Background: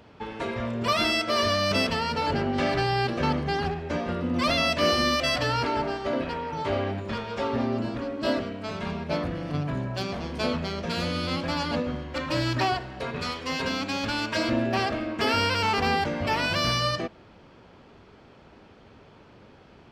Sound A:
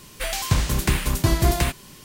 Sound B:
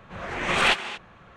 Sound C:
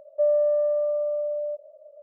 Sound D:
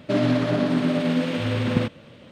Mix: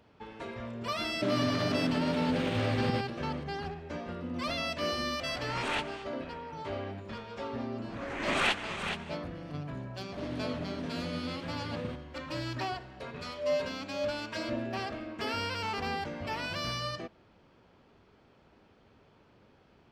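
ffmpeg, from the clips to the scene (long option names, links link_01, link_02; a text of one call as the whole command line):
ffmpeg -i bed.wav -i cue0.wav -i cue1.wav -i cue2.wav -i cue3.wav -filter_complex "[4:a]asplit=2[link_01][link_02];[2:a]asplit=2[link_03][link_04];[0:a]volume=-10dB[link_05];[link_01]acompressor=threshold=-23dB:ratio=6:attack=3.2:release=140:knee=1:detection=peak[link_06];[link_04]aecho=1:1:423:0.398[link_07];[3:a]aeval=exprs='val(0)*pow(10,-31*(0.5-0.5*cos(2*PI*1.9*n/s))/20)':channel_layout=same[link_08];[link_06]atrim=end=2.31,asetpts=PTS-STARTPTS,volume=-3dB,afade=type=in:duration=0.004:curve=hsin,afade=type=out:start_time=2.306:duration=0.004:curve=hsin,adelay=1130[link_09];[link_03]atrim=end=1.36,asetpts=PTS-STARTPTS,volume=-13.5dB,afade=type=in:duration=0.004:curve=hsin,afade=type=out:start_time=1.356:duration=0.004:curve=hsin,adelay=5070[link_10];[link_07]atrim=end=1.36,asetpts=PTS-STARTPTS,volume=-7.5dB,afade=type=in:duration=0.004:curve=hsin,afade=type=out:start_time=1.356:duration=0.004:curve=hsin,adelay=7790[link_11];[link_02]atrim=end=2.31,asetpts=PTS-STARTPTS,volume=-17.5dB,afade=type=in:duration=0.004:curve=hsin,afade=type=out:start_time=2.306:duration=0.004:curve=hsin,adelay=10080[link_12];[link_08]atrim=end=2.02,asetpts=PTS-STARTPTS,volume=-5dB,afade=type=in:duration=0.004:curve=hsin,afade=type=out:start_time=2.016:duration=0.004:curve=hsin,adelay=573300S[link_13];[link_05][link_09][link_10][link_11][link_12][link_13]amix=inputs=6:normalize=0" out.wav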